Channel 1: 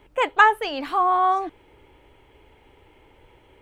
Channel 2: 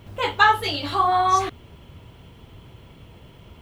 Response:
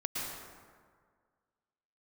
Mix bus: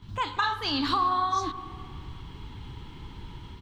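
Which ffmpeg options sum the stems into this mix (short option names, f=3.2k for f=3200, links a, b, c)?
-filter_complex "[0:a]dynaudnorm=f=110:g=3:m=10.5dB,acompressor=threshold=-21dB:ratio=6,volume=2dB,asplit=3[a][b][c];[b]volume=-13dB[d];[1:a]volume=-1,adelay=23,volume=1dB[e];[c]apad=whole_len=160616[f];[e][f]sidechaincompress=threshold=-25dB:ratio=5:attack=16:release=1110[g];[2:a]atrim=start_sample=2205[h];[d][h]afir=irnorm=-1:irlink=0[i];[a][g][i]amix=inputs=3:normalize=0,firequalizer=gain_entry='entry(210,0);entry(550,-23);entry(1000,-4);entry(2300,-13);entry(3900,3);entry(10000,-14)':delay=0.05:min_phase=1"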